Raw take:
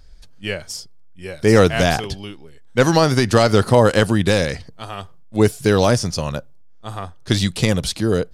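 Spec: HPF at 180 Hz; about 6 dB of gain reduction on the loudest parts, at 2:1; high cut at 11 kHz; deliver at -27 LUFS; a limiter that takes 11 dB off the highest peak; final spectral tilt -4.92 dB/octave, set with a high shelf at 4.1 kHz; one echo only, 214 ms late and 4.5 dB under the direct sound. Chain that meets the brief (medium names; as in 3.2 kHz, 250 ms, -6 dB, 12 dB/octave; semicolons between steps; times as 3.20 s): high-pass 180 Hz; low-pass 11 kHz; treble shelf 4.1 kHz -8 dB; compression 2:1, threshold -20 dBFS; peak limiter -16.5 dBFS; delay 214 ms -4.5 dB; trim +1.5 dB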